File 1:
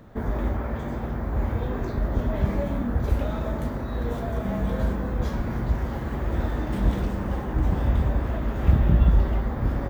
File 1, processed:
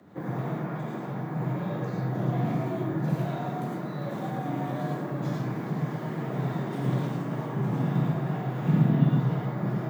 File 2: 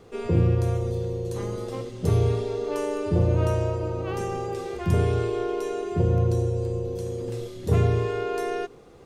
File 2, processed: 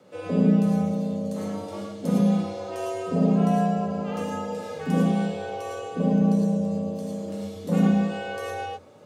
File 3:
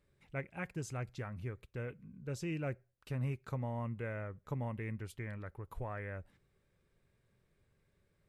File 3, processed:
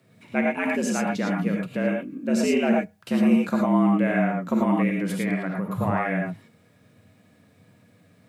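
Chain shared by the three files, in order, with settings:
gated-style reverb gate 130 ms rising, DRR -1 dB; frequency shift +85 Hz; peak normalisation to -9 dBFS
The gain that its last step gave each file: -6.5 dB, -4.5 dB, +14.0 dB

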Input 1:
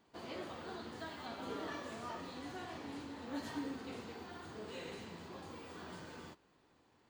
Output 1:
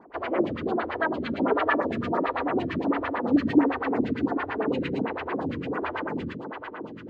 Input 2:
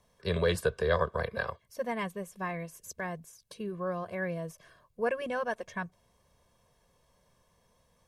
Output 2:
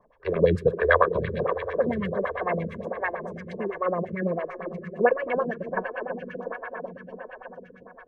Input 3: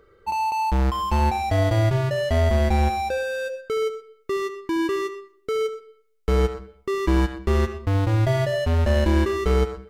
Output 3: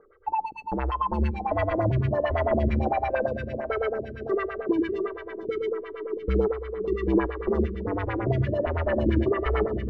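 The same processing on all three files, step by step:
echo with a slow build-up 123 ms, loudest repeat 5, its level -15 dB; LFO low-pass sine 8.9 Hz 270–2500 Hz; lamp-driven phase shifter 1.4 Hz; normalise loudness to -27 LUFS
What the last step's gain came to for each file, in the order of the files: +19.0 dB, +7.5 dB, -2.5 dB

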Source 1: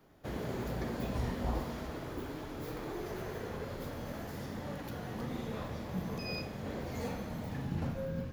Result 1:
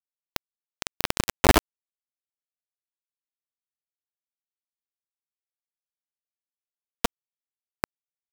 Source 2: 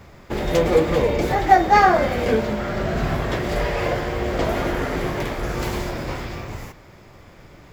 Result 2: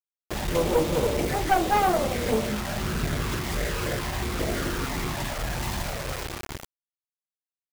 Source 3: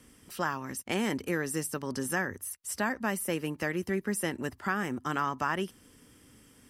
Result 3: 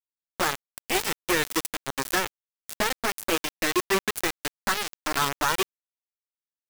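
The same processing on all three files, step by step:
touch-sensitive flanger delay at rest 6.2 ms, full sweep at -16 dBFS; one-sided clip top -22 dBFS; bit crusher 5-bit; normalise loudness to -27 LUFS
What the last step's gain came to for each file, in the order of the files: +17.5 dB, -2.5 dB, +8.0 dB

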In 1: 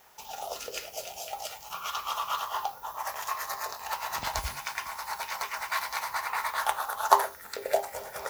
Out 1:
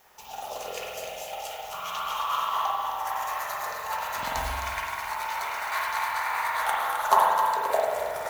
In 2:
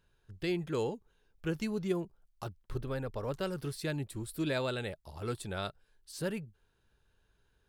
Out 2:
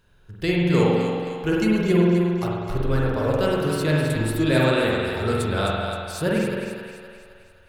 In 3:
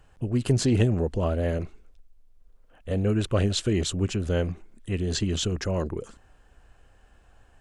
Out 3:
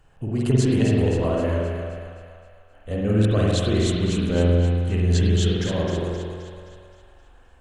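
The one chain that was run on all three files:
dynamic bell 5.1 kHz, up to -5 dB, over -53 dBFS, Q 4.5; in parallel at -8.5 dB: wavefolder -9 dBFS; on the sum: two-band feedback delay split 660 Hz, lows 149 ms, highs 262 ms, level -7 dB; spring tank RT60 1.4 s, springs 46 ms, chirp 60 ms, DRR -3 dB; peak normalisation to -6 dBFS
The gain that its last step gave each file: -4.5 dB, +7.0 dB, -4.0 dB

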